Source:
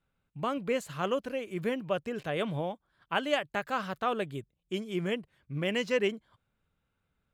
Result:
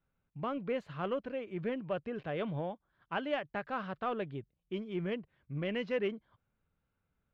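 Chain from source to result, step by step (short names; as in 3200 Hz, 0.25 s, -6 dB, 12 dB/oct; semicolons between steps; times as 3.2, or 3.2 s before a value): in parallel at -3.5 dB: soft clip -29.5 dBFS, distortion -10 dB; on the sum: air absorption 300 m; gain -6.5 dB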